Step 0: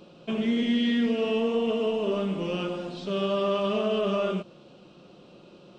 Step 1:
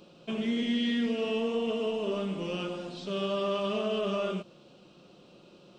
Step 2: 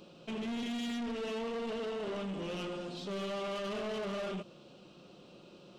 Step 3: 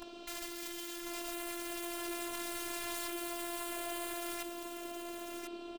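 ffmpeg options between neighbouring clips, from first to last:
-af "highshelf=f=3900:g=6.5,volume=0.596"
-af "asoftclip=type=tanh:threshold=0.0178"
-af "aeval=exprs='(mod(150*val(0)+1,2)-1)/150':c=same,afftfilt=real='hypot(re,im)*cos(PI*b)':imag='0':win_size=512:overlap=0.75,aecho=1:1:1045:0.501,volume=3.55"

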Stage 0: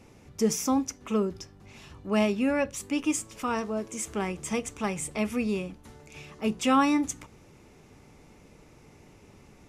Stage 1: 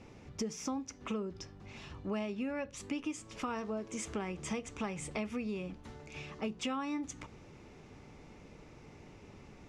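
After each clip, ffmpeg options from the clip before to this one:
-af "lowpass=5500,acompressor=threshold=0.02:ratio=10"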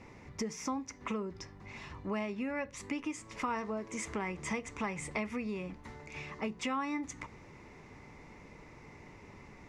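-af "equalizer=f=1000:t=o:w=0.33:g=8,equalizer=f=2000:t=o:w=0.33:g=10,equalizer=f=3150:t=o:w=0.33:g=-4"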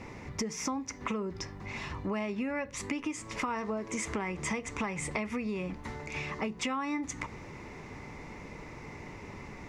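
-af "acompressor=threshold=0.01:ratio=3,volume=2.51"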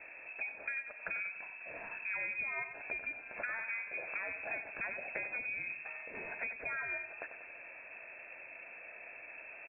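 -af "aecho=1:1:94|188|282|376|470|564:0.335|0.174|0.0906|0.0471|0.0245|0.0127,lowpass=f=2300:t=q:w=0.5098,lowpass=f=2300:t=q:w=0.6013,lowpass=f=2300:t=q:w=0.9,lowpass=f=2300:t=q:w=2.563,afreqshift=-2700,volume=0.501"

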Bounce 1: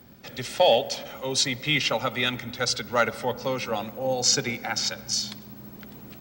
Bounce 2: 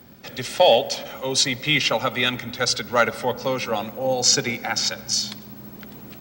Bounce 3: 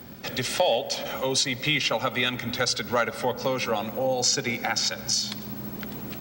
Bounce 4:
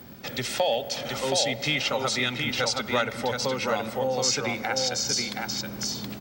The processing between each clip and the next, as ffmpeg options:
-af "lowshelf=f=120:g=-3.5,volume=1.58"
-af "acompressor=threshold=0.0316:ratio=2.5,volume=1.68"
-af "aecho=1:1:723:0.631,volume=0.794"

